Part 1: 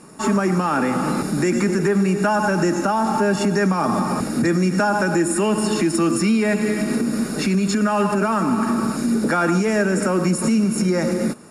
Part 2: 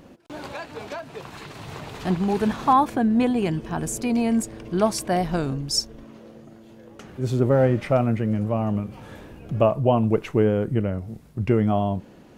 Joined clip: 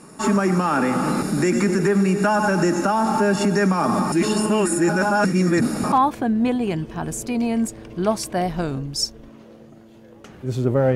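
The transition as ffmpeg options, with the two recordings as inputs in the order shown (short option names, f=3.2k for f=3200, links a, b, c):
-filter_complex "[0:a]apad=whole_dur=10.95,atrim=end=10.95,asplit=2[a][b];[a]atrim=end=4.122[c];[b]atrim=start=4.118:end=5.922,asetpts=PTS-STARTPTS,areverse[d];[1:a]atrim=start=2.668:end=7.7[e];[c][d]acrossfade=d=0.004:c1=hsin:c2=hsin[f];[f][e]acrossfade=d=0.004:c1=hsin:c2=hsin"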